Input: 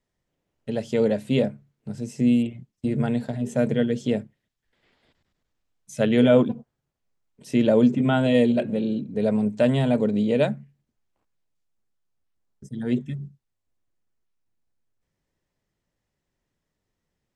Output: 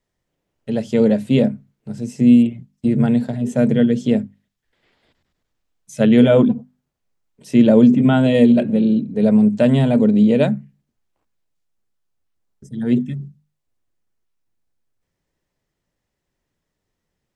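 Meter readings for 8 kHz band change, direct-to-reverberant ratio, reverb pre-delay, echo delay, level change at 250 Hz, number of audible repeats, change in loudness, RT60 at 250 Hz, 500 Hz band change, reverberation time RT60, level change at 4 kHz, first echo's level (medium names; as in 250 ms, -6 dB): no reading, no reverb, no reverb, no echo, +8.5 dB, no echo, +7.0 dB, no reverb, +4.0 dB, no reverb, +3.0 dB, no echo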